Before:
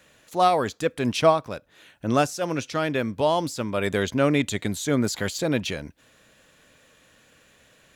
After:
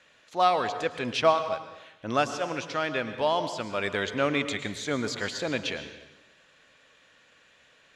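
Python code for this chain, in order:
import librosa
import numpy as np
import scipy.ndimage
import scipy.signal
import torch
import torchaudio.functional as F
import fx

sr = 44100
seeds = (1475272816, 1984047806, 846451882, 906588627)

y = scipy.signal.sosfilt(scipy.signal.butter(2, 4800.0, 'lowpass', fs=sr, output='sos'), x)
y = fx.low_shelf(y, sr, hz=450.0, db=-11.5)
y = fx.rev_plate(y, sr, seeds[0], rt60_s=1.0, hf_ratio=0.95, predelay_ms=95, drr_db=9.5)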